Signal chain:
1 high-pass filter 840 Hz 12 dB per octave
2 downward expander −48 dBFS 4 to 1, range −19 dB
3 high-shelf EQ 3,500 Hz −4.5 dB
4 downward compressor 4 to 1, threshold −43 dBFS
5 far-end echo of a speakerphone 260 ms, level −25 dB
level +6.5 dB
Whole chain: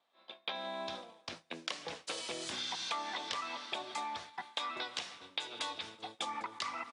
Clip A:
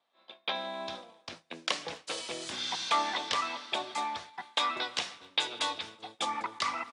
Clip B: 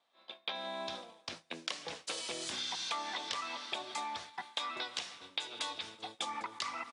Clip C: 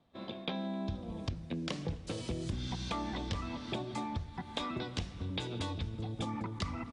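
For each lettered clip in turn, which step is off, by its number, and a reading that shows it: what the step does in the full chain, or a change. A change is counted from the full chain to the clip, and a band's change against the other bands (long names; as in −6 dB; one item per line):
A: 4, 1 kHz band +2.0 dB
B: 3, 8 kHz band +3.0 dB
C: 1, 125 Hz band +28.0 dB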